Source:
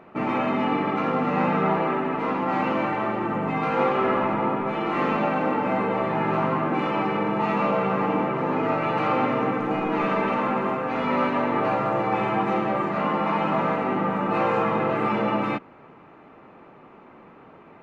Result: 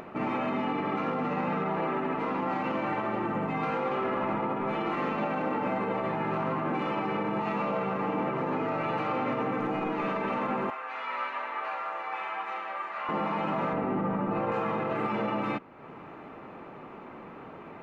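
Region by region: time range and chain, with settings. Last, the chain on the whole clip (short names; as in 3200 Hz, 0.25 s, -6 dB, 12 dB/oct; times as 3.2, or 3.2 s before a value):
10.7–13.09 HPF 1200 Hz + high shelf 4400 Hz -9.5 dB
13.73–14.52 LPF 4000 Hz 6 dB/oct + tilt -2 dB/oct
whole clip: limiter -18.5 dBFS; upward compressor, threshold -33 dBFS; gain -3 dB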